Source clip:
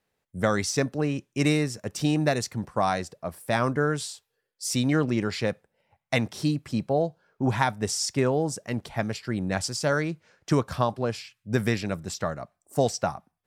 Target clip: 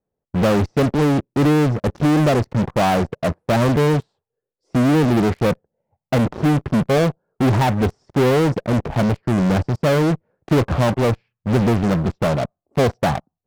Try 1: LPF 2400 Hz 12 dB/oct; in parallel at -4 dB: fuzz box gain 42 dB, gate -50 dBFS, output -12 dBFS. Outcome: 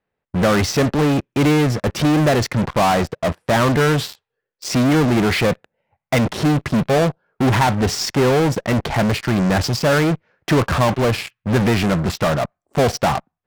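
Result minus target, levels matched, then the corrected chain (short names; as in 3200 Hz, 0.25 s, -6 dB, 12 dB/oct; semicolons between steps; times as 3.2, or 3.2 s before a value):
2000 Hz band +4.0 dB
LPF 650 Hz 12 dB/oct; in parallel at -4 dB: fuzz box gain 42 dB, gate -50 dBFS, output -12 dBFS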